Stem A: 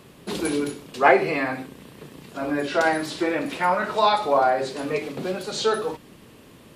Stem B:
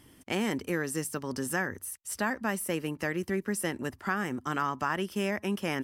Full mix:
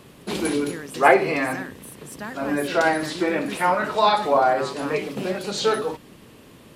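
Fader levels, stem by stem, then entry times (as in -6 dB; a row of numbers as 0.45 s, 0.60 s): +1.0 dB, -4.5 dB; 0.00 s, 0.00 s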